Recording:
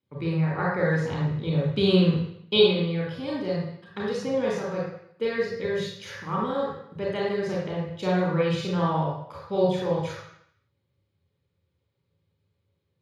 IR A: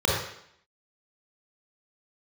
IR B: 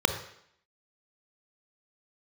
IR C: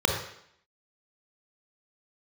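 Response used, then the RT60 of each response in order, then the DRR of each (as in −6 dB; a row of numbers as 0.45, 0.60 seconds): A; 0.70, 0.70, 0.70 seconds; −6.0, 6.0, 0.0 decibels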